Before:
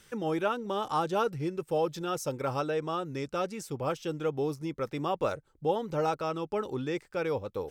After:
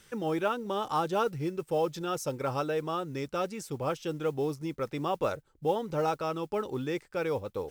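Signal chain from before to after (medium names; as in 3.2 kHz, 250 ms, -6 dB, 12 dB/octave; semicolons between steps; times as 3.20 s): modulation noise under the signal 31 dB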